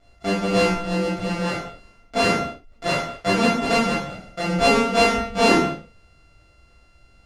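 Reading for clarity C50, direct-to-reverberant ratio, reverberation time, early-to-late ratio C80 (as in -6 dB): 2.5 dB, -10.0 dB, no single decay rate, 6.0 dB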